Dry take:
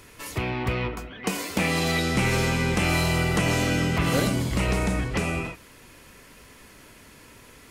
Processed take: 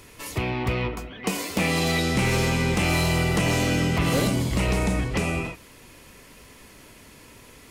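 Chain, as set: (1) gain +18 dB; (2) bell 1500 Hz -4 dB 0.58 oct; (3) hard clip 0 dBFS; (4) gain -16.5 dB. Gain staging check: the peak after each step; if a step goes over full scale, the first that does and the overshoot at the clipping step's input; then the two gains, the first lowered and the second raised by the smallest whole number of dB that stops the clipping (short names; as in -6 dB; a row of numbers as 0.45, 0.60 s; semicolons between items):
+7.0, +6.5, 0.0, -16.5 dBFS; step 1, 6.5 dB; step 1 +11 dB, step 4 -9.5 dB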